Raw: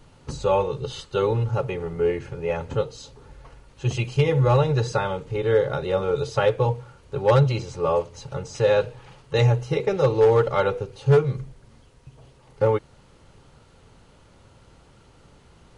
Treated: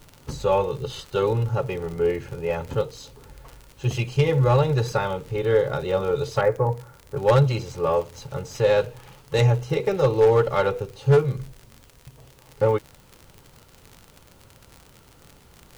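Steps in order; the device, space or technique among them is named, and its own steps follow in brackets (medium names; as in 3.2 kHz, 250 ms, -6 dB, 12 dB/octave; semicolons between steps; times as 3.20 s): 6.41–7.17 s: elliptic low-pass 2.1 kHz; record under a worn stylus (tracing distortion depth 0.058 ms; crackle 62 per s -32 dBFS; white noise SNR 39 dB)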